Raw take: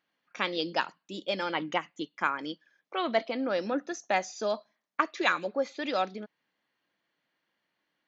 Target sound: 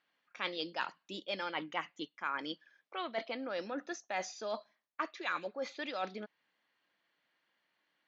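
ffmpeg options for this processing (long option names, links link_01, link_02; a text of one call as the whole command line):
ffmpeg -i in.wav -af "lowpass=5300,areverse,acompressor=threshold=-34dB:ratio=6,areverse,lowshelf=frequency=480:gain=-8,volume=2dB" out.wav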